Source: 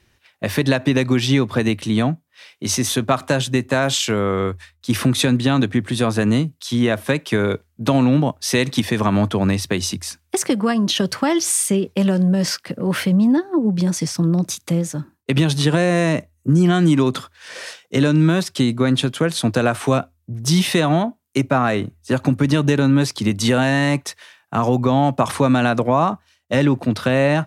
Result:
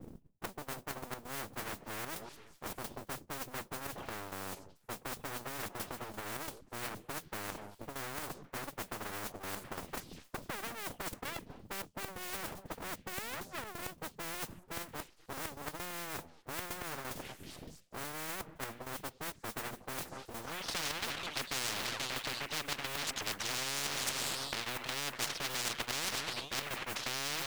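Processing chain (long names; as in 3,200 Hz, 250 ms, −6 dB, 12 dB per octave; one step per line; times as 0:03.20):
lower of the sound and its delayed copy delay 0.33 ms
reverb reduction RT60 2 s
low-pass filter sweep 160 Hz → 2,000 Hz, 0:20.02–0:20.71
noise that follows the level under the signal 32 dB
gate pattern "xx.x..xx.x.xxxxx" 132 BPM −12 dB
on a send: echo through a band-pass that steps 242 ms, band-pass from 860 Hz, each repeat 0.7 octaves, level −11.5 dB
on the sum: full-wave rectification
reversed playback
downward compressor 6 to 1, threshold −35 dBFS, peak gain reduction 26 dB
reversed playback
every bin compressed towards the loudest bin 10 to 1
level +4.5 dB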